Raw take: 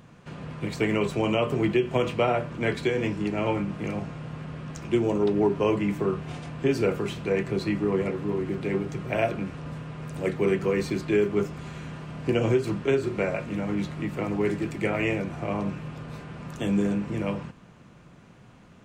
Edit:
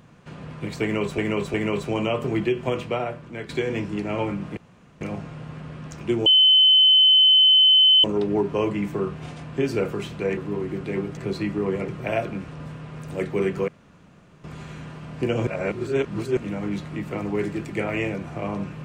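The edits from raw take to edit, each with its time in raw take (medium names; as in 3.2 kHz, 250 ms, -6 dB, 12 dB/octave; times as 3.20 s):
0.82–1.18 s: loop, 3 plays
1.87–2.77 s: fade out, to -10 dB
3.85 s: insert room tone 0.44 s
5.10 s: add tone 3.05 kHz -11.5 dBFS 1.78 s
7.43–8.14 s: move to 8.94 s
10.74–11.50 s: room tone
12.53–13.43 s: reverse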